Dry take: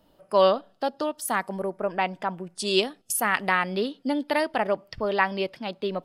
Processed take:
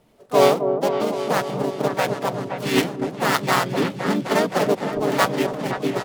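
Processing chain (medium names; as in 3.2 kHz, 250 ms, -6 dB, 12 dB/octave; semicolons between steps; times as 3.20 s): dead-time distortion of 0.11 ms; high-pass 51 Hz 6 dB/octave; delay with an opening low-pass 259 ms, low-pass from 750 Hz, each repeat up 2 oct, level -6 dB; harmony voices -7 st -2 dB, -5 st -1 dB, +3 st -10 dB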